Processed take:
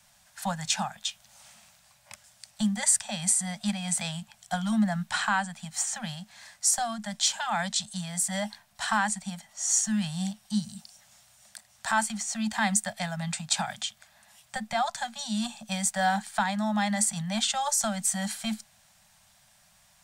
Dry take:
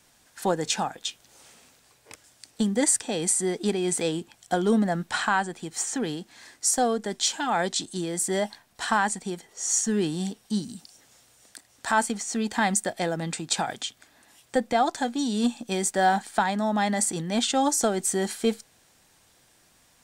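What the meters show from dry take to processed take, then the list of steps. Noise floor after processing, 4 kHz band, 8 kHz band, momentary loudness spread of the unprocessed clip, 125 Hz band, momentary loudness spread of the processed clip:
-62 dBFS, -0.5 dB, 0.0 dB, 9 LU, -0.5 dB, 11 LU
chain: Chebyshev band-stop 220–570 Hz, order 5; dynamic bell 630 Hz, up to -6 dB, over -39 dBFS, Q 1.5

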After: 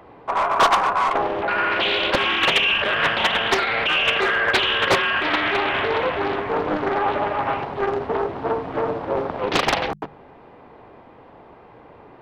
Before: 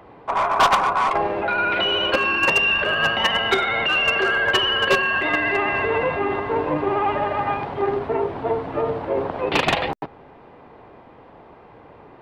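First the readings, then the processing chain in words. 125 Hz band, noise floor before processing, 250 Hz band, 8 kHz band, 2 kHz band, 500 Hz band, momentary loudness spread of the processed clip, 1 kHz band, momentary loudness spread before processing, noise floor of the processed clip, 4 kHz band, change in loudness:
-1.5 dB, -47 dBFS, -0.5 dB, +1.5 dB, -0.5 dB, -0.5 dB, 8 LU, 0.0 dB, 8 LU, -47 dBFS, 0.0 dB, 0.0 dB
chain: hum notches 50/100/150/200 Hz; loudspeaker Doppler distortion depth 0.73 ms

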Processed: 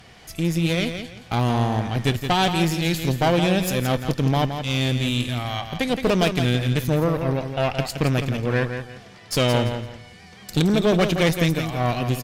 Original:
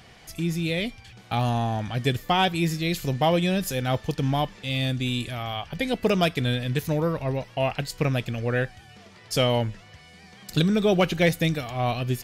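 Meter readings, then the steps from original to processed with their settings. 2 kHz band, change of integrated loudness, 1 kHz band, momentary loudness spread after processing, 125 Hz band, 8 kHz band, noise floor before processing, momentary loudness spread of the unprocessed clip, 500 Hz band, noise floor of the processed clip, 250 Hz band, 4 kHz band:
+3.0 dB, +3.0 dB, +2.0 dB, 9 LU, +4.0 dB, +4.5 dB, -50 dBFS, 8 LU, +2.5 dB, -46 dBFS, +4.0 dB, +3.0 dB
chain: valve stage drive 21 dB, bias 0.75; feedback delay 169 ms, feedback 26%, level -8 dB; trim +7 dB

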